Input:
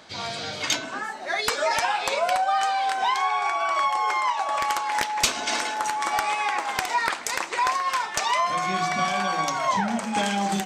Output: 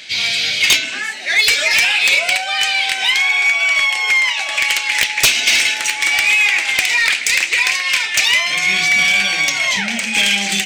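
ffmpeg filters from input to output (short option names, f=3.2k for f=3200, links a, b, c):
-af "highshelf=f=1.6k:t=q:w=3:g=13.5,acontrast=62,volume=-5.5dB"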